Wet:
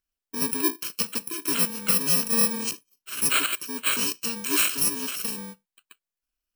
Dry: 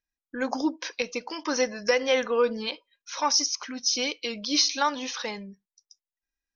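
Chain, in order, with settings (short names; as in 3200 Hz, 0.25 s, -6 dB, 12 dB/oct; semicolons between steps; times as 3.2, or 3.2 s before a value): FFT order left unsorted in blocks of 64 samples; soft clip -17 dBFS, distortion -17 dB; gain +3 dB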